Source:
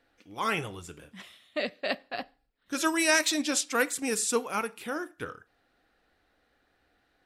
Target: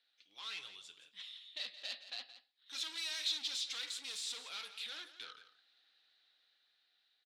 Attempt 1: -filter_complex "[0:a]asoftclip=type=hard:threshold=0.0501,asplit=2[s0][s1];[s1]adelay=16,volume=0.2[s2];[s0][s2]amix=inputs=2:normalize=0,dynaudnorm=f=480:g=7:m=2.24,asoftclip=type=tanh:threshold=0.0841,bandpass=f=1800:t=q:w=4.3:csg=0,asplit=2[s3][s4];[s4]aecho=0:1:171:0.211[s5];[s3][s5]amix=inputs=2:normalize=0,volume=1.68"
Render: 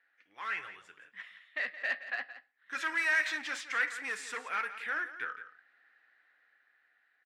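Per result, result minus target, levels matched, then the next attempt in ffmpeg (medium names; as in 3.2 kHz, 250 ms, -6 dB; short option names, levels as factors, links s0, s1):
4 kHz band -15.0 dB; saturation: distortion -9 dB
-filter_complex "[0:a]asoftclip=type=hard:threshold=0.0501,asplit=2[s0][s1];[s1]adelay=16,volume=0.2[s2];[s0][s2]amix=inputs=2:normalize=0,dynaudnorm=f=480:g=7:m=2.24,asoftclip=type=tanh:threshold=0.0841,bandpass=f=3800:t=q:w=4.3:csg=0,asplit=2[s3][s4];[s4]aecho=0:1:171:0.211[s5];[s3][s5]amix=inputs=2:normalize=0,volume=1.68"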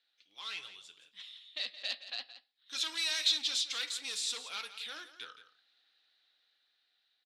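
saturation: distortion -9 dB
-filter_complex "[0:a]asoftclip=type=hard:threshold=0.0501,asplit=2[s0][s1];[s1]adelay=16,volume=0.2[s2];[s0][s2]amix=inputs=2:normalize=0,dynaudnorm=f=480:g=7:m=2.24,asoftclip=type=tanh:threshold=0.0266,bandpass=f=3800:t=q:w=4.3:csg=0,asplit=2[s3][s4];[s4]aecho=0:1:171:0.211[s5];[s3][s5]amix=inputs=2:normalize=0,volume=1.68"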